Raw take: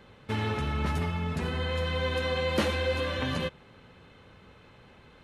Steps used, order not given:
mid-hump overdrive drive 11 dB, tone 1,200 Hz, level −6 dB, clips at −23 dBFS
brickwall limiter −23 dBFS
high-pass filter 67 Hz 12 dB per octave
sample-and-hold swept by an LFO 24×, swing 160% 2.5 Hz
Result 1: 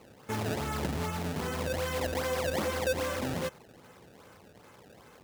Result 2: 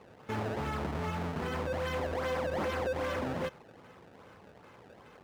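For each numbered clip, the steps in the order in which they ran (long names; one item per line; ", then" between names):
mid-hump overdrive, then sample-and-hold swept by an LFO, then brickwall limiter, then high-pass filter
sample-and-hold swept by an LFO, then high-pass filter, then brickwall limiter, then mid-hump overdrive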